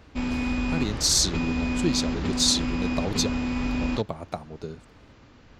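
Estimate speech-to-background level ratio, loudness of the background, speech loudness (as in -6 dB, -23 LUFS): 2.0 dB, -28.5 LUFS, -26.5 LUFS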